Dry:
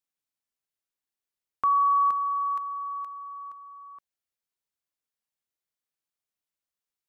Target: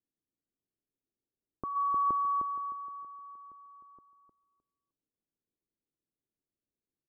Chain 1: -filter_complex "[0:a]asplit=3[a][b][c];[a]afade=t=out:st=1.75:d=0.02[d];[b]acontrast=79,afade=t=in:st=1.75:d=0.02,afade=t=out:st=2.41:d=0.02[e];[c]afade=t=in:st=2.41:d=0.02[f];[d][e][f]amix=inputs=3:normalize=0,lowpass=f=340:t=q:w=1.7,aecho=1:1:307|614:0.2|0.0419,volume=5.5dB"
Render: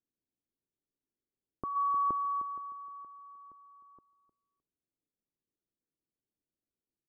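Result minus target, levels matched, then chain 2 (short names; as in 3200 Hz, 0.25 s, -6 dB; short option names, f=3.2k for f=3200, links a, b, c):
echo-to-direct -8 dB
-filter_complex "[0:a]asplit=3[a][b][c];[a]afade=t=out:st=1.75:d=0.02[d];[b]acontrast=79,afade=t=in:st=1.75:d=0.02,afade=t=out:st=2.41:d=0.02[e];[c]afade=t=in:st=2.41:d=0.02[f];[d][e][f]amix=inputs=3:normalize=0,lowpass=f=340:t=q:w=1.7,aecho=1:1:307|614|921:0.501|0.105|0.0221,volume=5.5dB"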